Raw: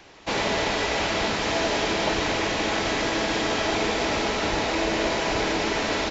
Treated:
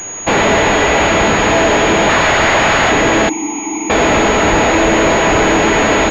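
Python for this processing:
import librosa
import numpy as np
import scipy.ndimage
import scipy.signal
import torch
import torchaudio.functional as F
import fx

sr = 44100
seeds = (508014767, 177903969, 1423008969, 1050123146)

p1 = fx.spec_box(x, sr, start_s=2.09, length_s=0.82, low_hz=520.0, high_hz=2400.0, gain_db=11)
p2 = fx.fold_sine(p1, sr, drive_db=17, ceiling_db=-3.5)
p3 = p1 + (p2 * librosa.db_to_amplitude(-4.0))
p4 = fx.vowel_filter(p3, sr, vowel='u', at=(3.29, 3.9))
p5 = fx.pwm(p4, sr, carrier_hz=6700.0)
y = p5 * librosa.db_to_amplitude(-1.0)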